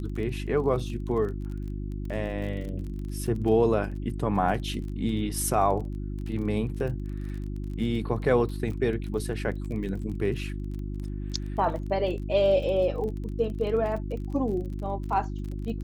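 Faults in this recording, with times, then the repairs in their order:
crackle 28 per s -35 dBFS
hum 50 Hz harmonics 7 -33 dBFS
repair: de-click; de-hum 50 Hz, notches 7

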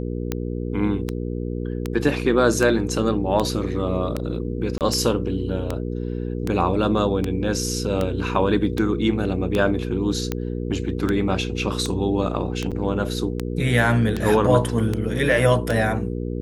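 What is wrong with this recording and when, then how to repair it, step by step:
hum 60 Hz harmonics 8 -27 dBFS
tick 78 rpm -10 dBFS
4.78–4.81 s: dropout 28 ms
12.71–12.72 s: dropout 6.7 ms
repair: de-click; de-hum 60 Hz, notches 8; interpolate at 4.78 s, 28 ms; interpolate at 12.71 s, 6.7 ms

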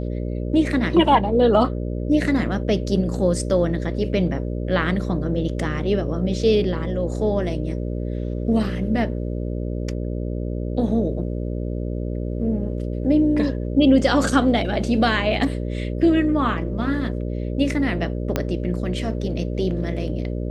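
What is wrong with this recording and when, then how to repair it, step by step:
buzz 60 Hz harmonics 10 -26 dBFS
18.36 s: pop -7 dBFS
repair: de-click; de-hum 60 Hz, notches 10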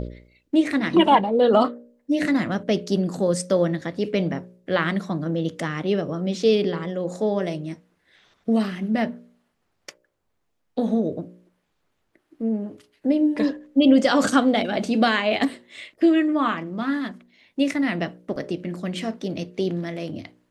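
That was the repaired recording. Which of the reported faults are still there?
18.36 s: pop

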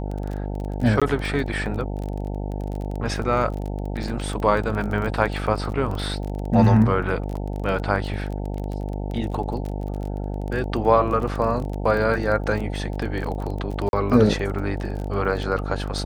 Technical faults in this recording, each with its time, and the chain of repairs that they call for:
buzz 50 Hz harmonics 18 -28 dBFS
crackle 23 per s -28 dBFS
1.00–1.02 s: dropout 16 ms
13.89–13.93 s: dropout 41 ms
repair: de-click; de-hum 50 Hz, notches 18; interpolate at 1.00 s, 16 ms; interpolate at 13.89 s, 41 ms

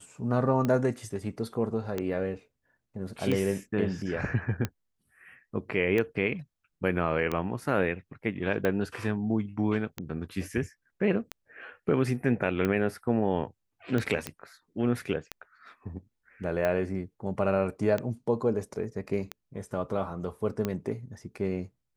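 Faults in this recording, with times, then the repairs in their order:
tick 45 rpm -16 dBFS
14.27 s: pop -16 dBFS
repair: de-click

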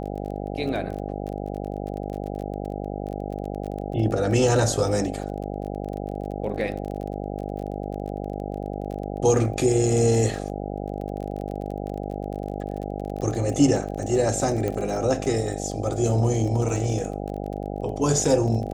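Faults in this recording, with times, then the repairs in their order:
buzz 50 Hz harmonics 16 -31 dBFS
crackle 27 per s -32 dBFS
14.68 s: pop -15 dBFS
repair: de-click; de-hum 50 Hz, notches 16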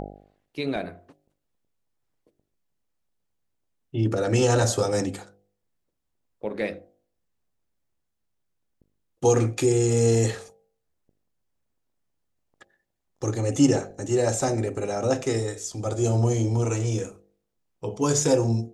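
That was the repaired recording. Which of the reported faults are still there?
14.68 s: pop

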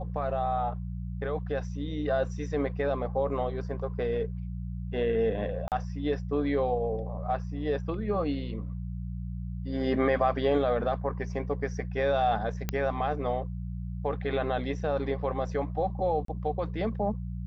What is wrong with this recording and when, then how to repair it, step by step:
hum 60 Hz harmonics 3 -35 dBFS
5.68–5.72 s: dropout 38 ms
12.69 s: pop -14 dBFS
16.25–16.28 s: dropout 33 ms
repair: de-click; de-hum 60 Hz, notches 3; interpolate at 5.68 s, 38 ms; interpolate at 16.25 s, 33 ms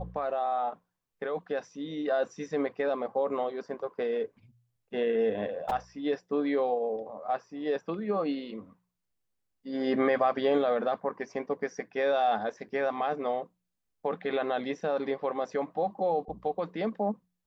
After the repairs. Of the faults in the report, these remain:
nothing left

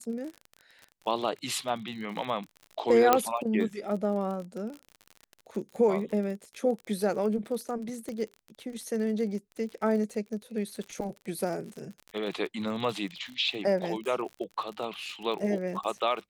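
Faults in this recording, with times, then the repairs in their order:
crackle 44 per s -36 dBFS
3.13 s: pop -6 dBFS
8.09 s: pop -26 dBFS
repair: de-click

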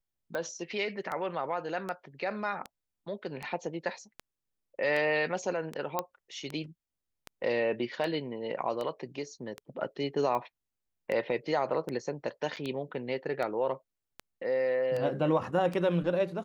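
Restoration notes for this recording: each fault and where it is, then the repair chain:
tick 78 rpm -22 dBFS
5.99 s: pop -15 dBFS
12.56–12.57 s: dropout 7.3 ms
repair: de-click; interpolate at 12.56 s, 7.3 ms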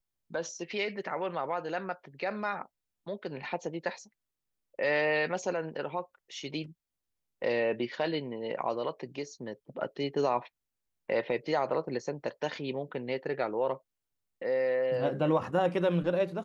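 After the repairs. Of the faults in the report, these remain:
nothing left

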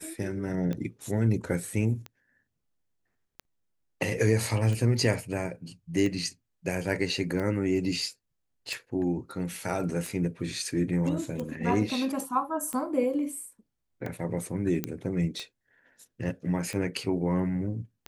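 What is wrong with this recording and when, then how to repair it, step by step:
tick 45 rpm -22 dBFS
14.84 s: pop -14 dBFS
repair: de-click

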